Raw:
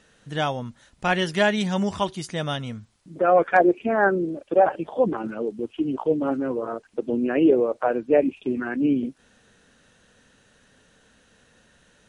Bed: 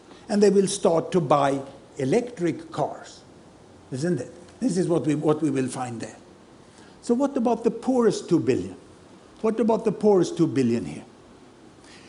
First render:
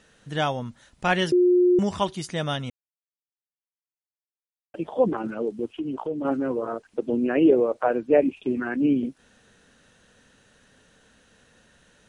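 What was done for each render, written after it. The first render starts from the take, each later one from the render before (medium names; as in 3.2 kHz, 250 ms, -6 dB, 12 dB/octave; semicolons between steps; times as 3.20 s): 1.32–1.79 s: bleep 358 Hz -14.5 dBFS; 2.70–4.74 s: mute; 5.68–6.25 s: compression 2.5:1, threshold -28 dBFS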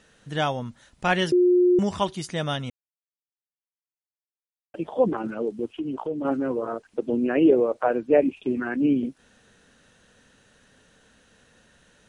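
no audible change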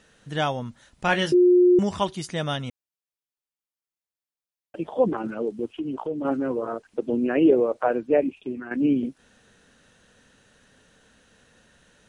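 1.07–1.79 s: doubling 20 ms -7.5 dB; 7.93–8.71 s: fade out linear, to -9.5 dB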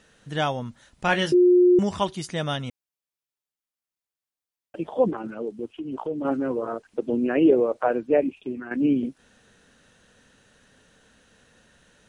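5.11–5.92 s: gain -3.5 dB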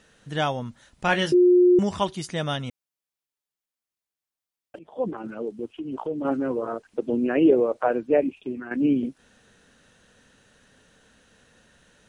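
4.79–5.34 s: fade in, from -22 dB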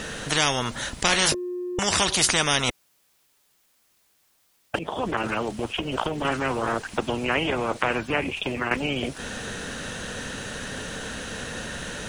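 in parallel at +2 dB: compression, threshold -25 dBFS, peak gain reduction 12 dB; on the sum: spectrum-flattening compressor 4:1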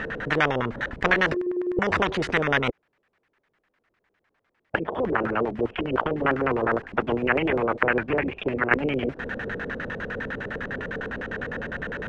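LFO low-pass square 9.9 Hz 450–1800 Hz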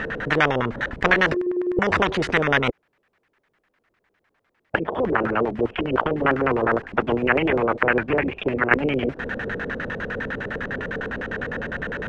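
trim +3 dB; peak limiter -1 dBFS, peak gain reduction 2 dB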